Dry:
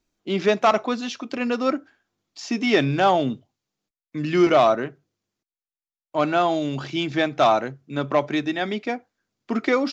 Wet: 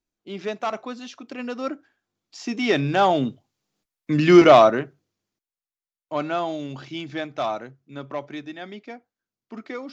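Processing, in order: Doppler pass-by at 4.13 s, 5 m/s, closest 2.9 m; trim +6.5 dB

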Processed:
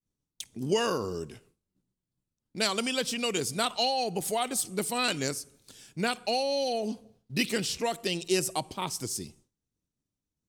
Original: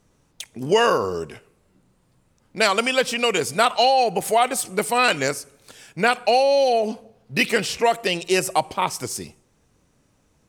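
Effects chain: expander -49 dBFS; high-order bell 1.1 kHz -8.5 dB 2.8 oct; trim -4 dB

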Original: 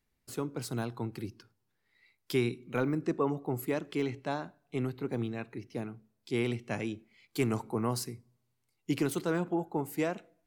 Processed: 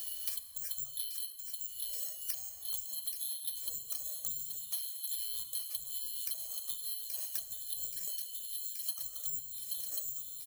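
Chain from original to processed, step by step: four frequency bands reordered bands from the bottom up 2413; tremolo triangle 0.55 Hz, depth 100%; low-pass that closes with the level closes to 370 Hz, closed at -32.5 dBFS; in parallel at -10 dB: integer overflow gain 40 dB; on the sum: careless resampling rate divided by 6×, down none, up zero stuff; treble shelf 6.8 kHz +5 dB; comb 1.7 ms, depth 80%; plate-style reverb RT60 0.71 s, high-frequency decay 0.75×, DRR 8 dB; compression 3:1, threshold -49 dBFS, peak gain reduction 18.5 dB; treble shelf 3.1 kHz +10 dB; on a send: feedback echo behind a high-pass 827 ms, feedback 68%, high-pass 2.8 kHz, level -8 dB; on the sum: three bands compressed up and down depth 100%

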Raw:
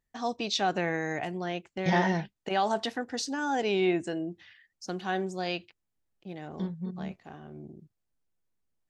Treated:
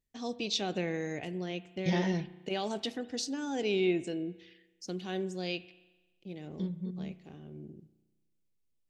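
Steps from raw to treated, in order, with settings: high-order bell 1.1 kHz -10 dB; spring tank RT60 1.2 s, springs 33 ms, chirp 60 ms, DRR 15 dB; trim -2 dB

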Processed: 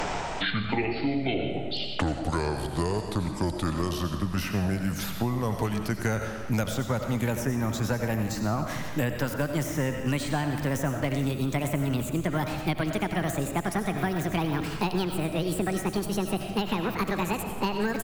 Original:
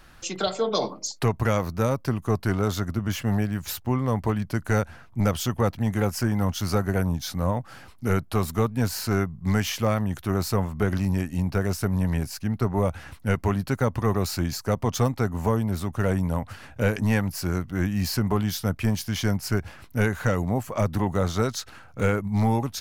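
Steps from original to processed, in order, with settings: gliding tape speed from 53% -> 200%; reverse; upward compressor, threshold -24 dBFS; reverse; frequency-shifting echo 88 ms, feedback 62%, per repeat -43 Hz, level -17 dB; algorithmic reverb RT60 0.72 s, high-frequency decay 0.85×, pre-delay 45 ms, DRR 6.5 dB; three bands compressed up and down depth 100%; trim -5 dB

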